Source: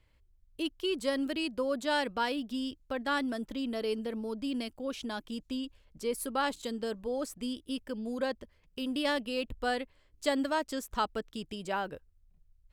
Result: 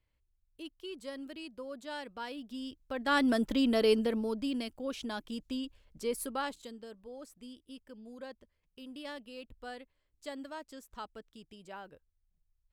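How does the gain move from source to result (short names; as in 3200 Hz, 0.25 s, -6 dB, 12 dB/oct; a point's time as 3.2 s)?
2.09 s -11.5 dB
2.92 s -3 dB
3.3 s +7 dB
3.93 s +7 dB
4.59 s -1 dB
6.2 s -1 dB
6.86 s -13 dB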